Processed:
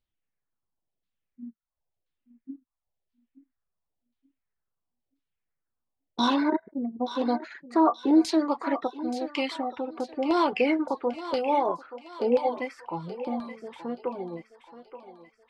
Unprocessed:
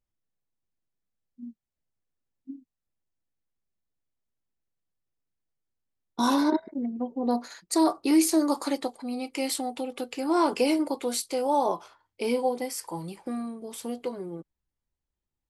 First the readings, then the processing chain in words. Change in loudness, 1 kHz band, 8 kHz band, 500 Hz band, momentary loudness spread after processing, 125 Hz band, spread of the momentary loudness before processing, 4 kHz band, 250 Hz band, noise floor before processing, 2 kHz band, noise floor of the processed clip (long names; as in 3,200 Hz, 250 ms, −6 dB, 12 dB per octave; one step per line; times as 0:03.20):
+0.5 dB, +1.5 dB, −15.5 dB, +1.0 dB, 22 LU, can't be measured, 18 LU, −1.0 dB, 0.0 dB, below −85 dBFS, +2.5 dB, −85 dBFS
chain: auto-filter low-pass saw down 0.97 Hz 600–4,100 Hz
feedback echo with a high-pass in the loop 877 ms, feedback 50%, high-pass 450 Hz, level −10.5 dB
reverb reduction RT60 0.54 s